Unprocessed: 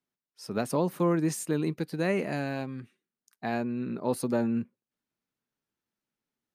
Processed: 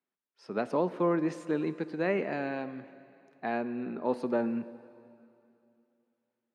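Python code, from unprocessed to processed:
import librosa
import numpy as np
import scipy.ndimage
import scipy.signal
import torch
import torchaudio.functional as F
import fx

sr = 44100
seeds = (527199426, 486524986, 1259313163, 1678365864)

y = fx.bandpass_edges(x, sr, low_hz=250.0, high_hz=2700.0)
y = fx.rev_plate(y, sr, seeds[0], rt60_s=2.7, hf_ratio=0.95, predelay_ms=0, drr_db=14.0)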